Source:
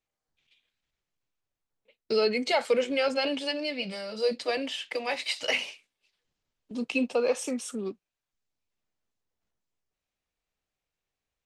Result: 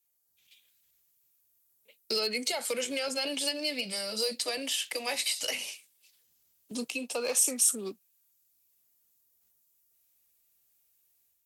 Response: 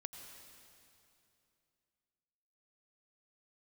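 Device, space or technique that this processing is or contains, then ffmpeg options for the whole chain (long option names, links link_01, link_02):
FM broadcast chain: -filter_complex "[0:a]highpass=43,dynaudnorm=framelen=250:gausssize=3:maxgain=6dB,acrossover=split=320|640[link_01][link_02][link_03];[link_01]acompressor=threshold=-33dB:ratio=4[link_04];[link_02]acompressor=threshold=-29dB:ratio=4[link_05];[link_03]acompressor=threshold=-26dB:ratio=4[link_06];[link_04][link_05][link_06]amix=inputs=3:normalize=0,aemphasis=mode=production:type=50fm,alimiter=limit=-16.5dB:level=0:latency=1:release=476,asoftclip=type=hard:threshold=-19dB,lowpass=frequency=15000:width=0.5412,lowpass=frequency=15000:width=1.3066,aemphasis=mode=production:type=50fm,volume=-5.5dB"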